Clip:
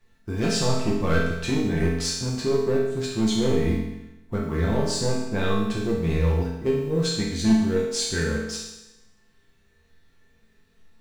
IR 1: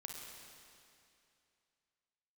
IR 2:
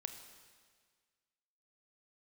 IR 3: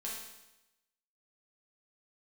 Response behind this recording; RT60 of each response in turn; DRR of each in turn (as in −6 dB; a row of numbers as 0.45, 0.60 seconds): 3; 2.6, 1.7, 0.95 seconds; 0.0, 7.0, −5.5 decibels